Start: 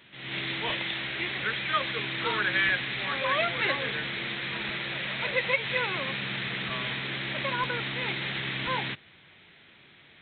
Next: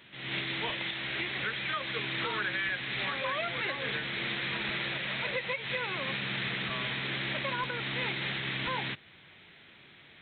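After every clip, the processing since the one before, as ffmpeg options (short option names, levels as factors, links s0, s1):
-af "alimiter=limit=0.0708:level=0:latency=1:release=285"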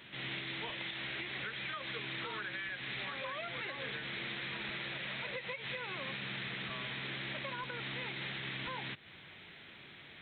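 -af "acompressor=threshold=0.01:ratio=6,volume=1.19"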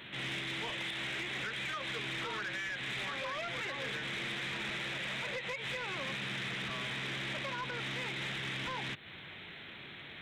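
-af "asoftclip=type=tanh:threshold=0.0119,volume=1.88"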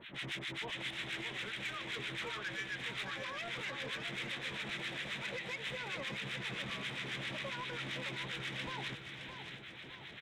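-filter_complex "[0:a]acrossover=split=1100[s0][s1];[s0]aeval=exprs='val(0)*(1-1/2+1/2*cos(2*PI*7.5*n/s))':c=same[s2];[s1]aeval=exprs='val(0)*(1-1/2-1/2*cos(2*PI*7.5*n/s))':c=same[s3];[s2][s3]amix=inputs=2:normalize=0,asplit=2[s4][s5];[s5]aecho=0:1:615|1230|1845|2460|3075:0.398|0.187|0.0879|0.0413|0.0194[s6];[s4][s6]amix=inputs=2:normalize=0,volume=1.12"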